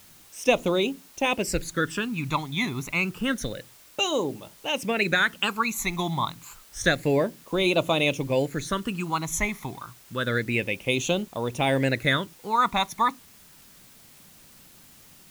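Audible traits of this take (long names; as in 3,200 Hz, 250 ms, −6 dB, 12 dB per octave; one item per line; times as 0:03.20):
phaser sweep stages 12, 0.29 Hz, lowest notch 490–1,700 Hz
a quantiser's noise floor 10 bits, dither triangular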